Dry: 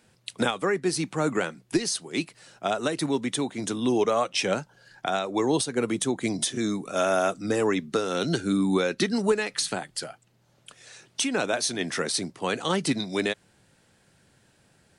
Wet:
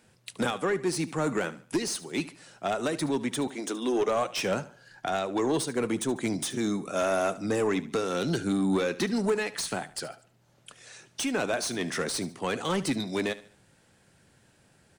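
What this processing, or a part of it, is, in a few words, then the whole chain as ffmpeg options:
saturation between pre-emphasis and de-emphasis: -filter_complex "[0:a]asettb=1/sr,asplit=3[link_01][link_02][link_03];[link_01]atrim=end=3.474[link_04];[link_02]atrim=start=3.47:end=4.08,asetpts=PTS-STARTPTS,afade=type=in:duration=0.004:curve=qsin,afade=type=out:start_time=0.606:duration=0.004:curve=qsin,highpass=frequency=270:width=0.5412,highpass=frequency=270:width=1.3066[link_05];[link_03]atrim=start=4.076[link_06];[link_04][link_05]acrossfade=duration=0.004:curve1=hsin:curve2=qsin[link_07];[link_07][link_06]acrossfade=duration=0.004:curve1=qsin:curve2=hsin,highshelf=frequency=2900:gain=8,asoftclip=type=tanh:threshold=-19.5dB,highshelf=frequency=2900:gain=-8,equalizer=frequency=4000:width=1.5:gain=-2,aecho=1:1:73|146|219:0.141|0.0509|0.0183"

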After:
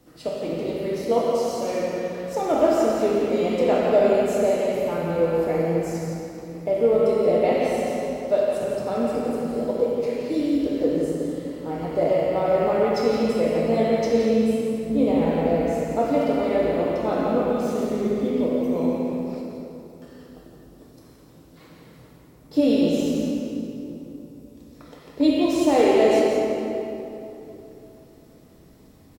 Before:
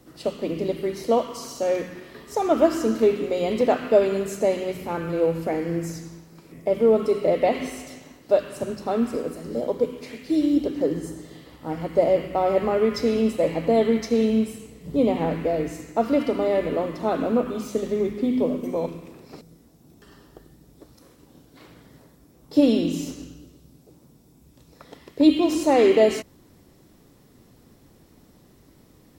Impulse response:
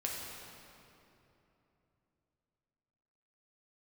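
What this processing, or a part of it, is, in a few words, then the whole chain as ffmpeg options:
cave: -filter_complex "[0:a]aecho=1:1:171:0.398[link_01];[1:a]atrim=start_sample=2205[link_02];[link_01][link_02]afir=irnorm=-1:irlink=0,volume=-2dB"

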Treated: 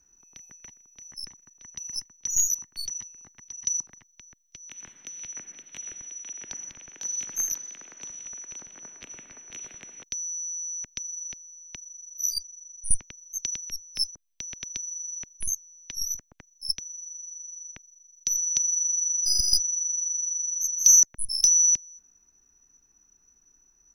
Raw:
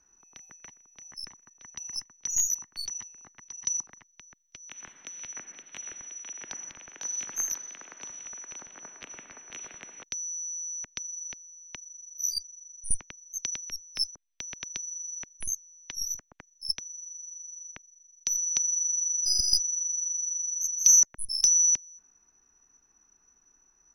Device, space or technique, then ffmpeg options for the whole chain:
smiley-face EQ: -af "lowshelf=frequency=170:gain=5,equalizer=frequency=1100:width_type=o:width=1.9:gain=-5.5,highshelf=frequency=7800:gain=7.5"

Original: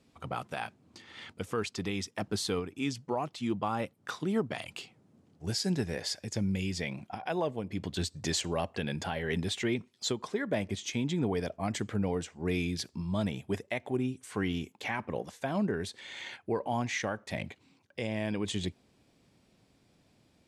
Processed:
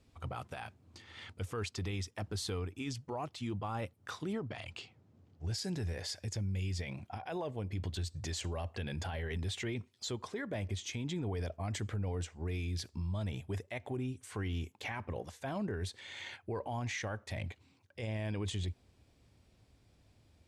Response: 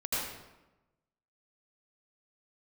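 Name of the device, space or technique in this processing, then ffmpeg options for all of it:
car stereo with a boomy subwoofer: -filter_complex "[0:a]asettb=1/sr,asplit=3[link_01][link_02][link_03];[link_01]atrim=end=4.334[link_04];[link_02]atrim=start=4.33:end=5.54,asetpts=PTS-STARTPTS,afade=type=in:duration=0.004:curve=qsin,afade=type=out:start_time=1.206:duration=0.004:curve=qsin,lowpass=6100[link_05];[link_03]atrim=start=5.536[link_06];[link_04][link_05]acrossfade=duration=0.004:curve1=hsin:curve2=qsin[link_07];[link_07][link_06]acrossfade=duration=0.004:curve1=qsin:curve2=hsin,lowshelf=frequency=120:width_type=q:width=1.5:gain=10,alimiter=level_in=3dB:limit=-24dB:level=0:latency=1:release=25,volume=-3dB,volume=-3dB"

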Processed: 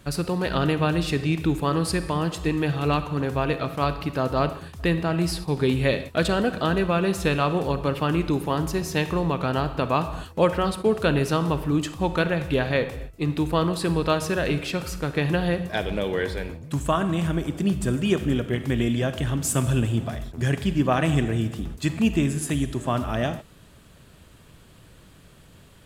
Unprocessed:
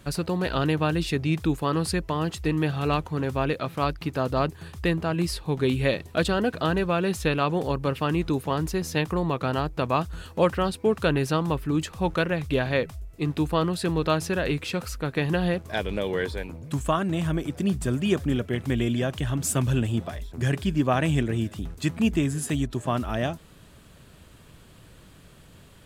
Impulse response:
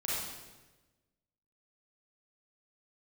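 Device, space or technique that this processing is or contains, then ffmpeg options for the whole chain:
keyed gated reverb: -filter_complex "[0:a]asplit=3[link_01][link_02][link_03];[1:a]atrim=start_sample=2205[link_04];[link_02][link_04]afir=irnorm=-1:irlink=0[link_05];[link_03]apad=whole_len=1140173[link_06];[link_05][link_06]sidechaingate=range=-33dB:threshold=-37dB:ratio=16:detection=peak,volume=-13.5dB[link_07];[link_01][link_07]amix=inputs=2:normalize=0"

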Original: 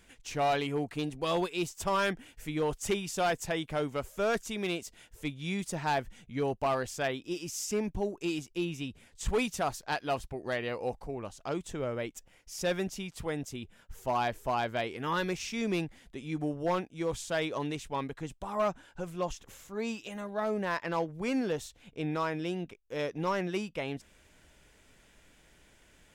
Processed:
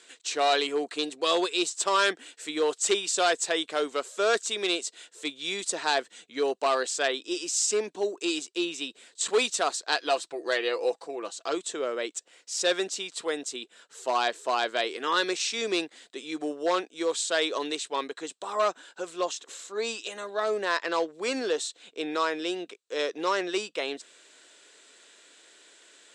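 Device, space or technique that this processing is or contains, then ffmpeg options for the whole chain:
phone speaker on a table: -filter_complex "[0:a]asettb=1/sr,asplit=3[link_01][link_02][link_03];[link_01]atrim=end=9.984[link_04];[link_02]atrim=start=9.98:end=11.55,asetpts=PTS-STARTPTS,afade=type=in:duration=0.004:curve=qsin,afade=type=out:start_time=1.566:duration=0.004:curve=qsin,aecho=1:1:6:0.47,atrim=end_sample=69237[link_05];[link_03]atrim=start=11.546[link_06];[link_04][link_05]acrossfade=duration=0.004:curve1=hsin:curve2=qsin[link_07];[link_07][link_06]acrossfade=duration=0.004:curve1=qsin:curve2=hsin,highpass=frequency=360:width=0.5412,highpass=frequency=360:width=1.3066,equalizer=frequency=590:width_type=q:width=4:gain=-4,equalizer=frequency=850:width_type=q:width=4:gain=-7,equalizer=frequency=2200:width_type=q:width=4:gain=-4,equalizer=frequency=4000:width_type=q:width=4:gain=9,equalizer=frequency=7900:width_type=q:width=4:gain=9,lowpass=frequency=8600:width=0.5412,lowpass=frequency=8600:width=1.3066,volume=7.5dB"

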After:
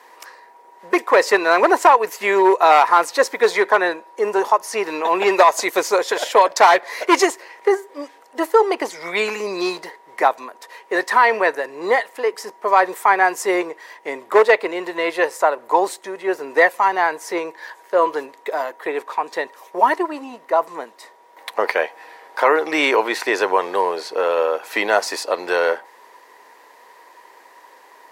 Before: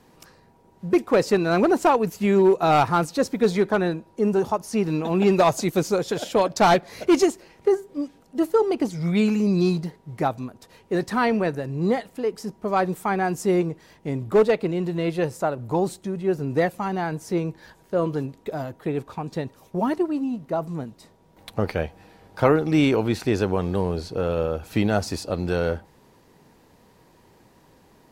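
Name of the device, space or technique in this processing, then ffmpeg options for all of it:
laptop speaker: -af "highpass=frequency=430:width=0.5412,highpass=frequency=430:width=1.3066,equalizer=frequency=1000:width_type=o:width=0.28:gain=10.5,equalizer=frequency=1900:width_type=o:width=0.46:gain=10,alimiter=limit=-9.5dB:level=0:latency=1:release=110,volume=7dB"

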